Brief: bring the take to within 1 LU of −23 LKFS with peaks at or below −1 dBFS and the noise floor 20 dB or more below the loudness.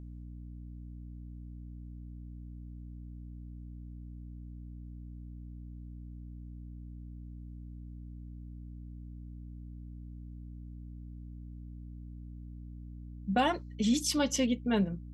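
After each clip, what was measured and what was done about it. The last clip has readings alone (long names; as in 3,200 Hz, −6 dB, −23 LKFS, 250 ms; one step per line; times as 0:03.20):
mains hum 60 Hz; hum harmonics up to 300 Hz; level of the hum −43 dBFS; integrated loudness −38.5 LKFS; sample peak −16.5 dBFS; target loudness −23.0 LKFS
→ mains-hum notches 60/120/180/240/300 Hz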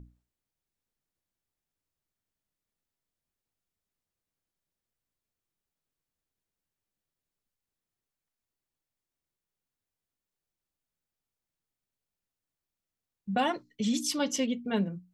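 mains hum none found; integrated loudness −30.5 LKFS; sample peak −17.0 dBFS; target loudness −23.0 LKFS
→ level +7.5 dB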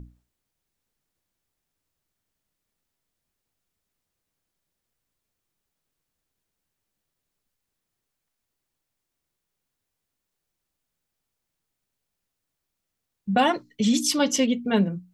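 integrated loudness −23.0 LKFS; sample peak −9.5 dBFS; background noise floor −83 dBFS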